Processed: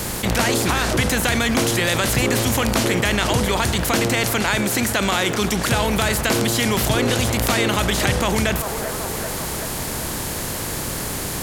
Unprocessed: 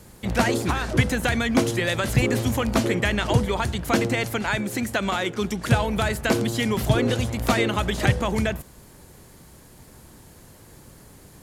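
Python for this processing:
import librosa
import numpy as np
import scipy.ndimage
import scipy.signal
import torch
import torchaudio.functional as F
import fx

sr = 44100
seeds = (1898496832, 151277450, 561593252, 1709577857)

p1 = fx.spec_flatten(x, sr, power=0.69)
p2 = p1 + fx.echo_wet_bandpass(p1, sr, ms=386, feedback_pct=60, hz=750.0, wet_db=-21.0, dry=0)
p3 = fx.env_flatten(p2, sr, amount_pct=70)
y = F.gain(torch.from_numpy(p3), -2.5).numpy()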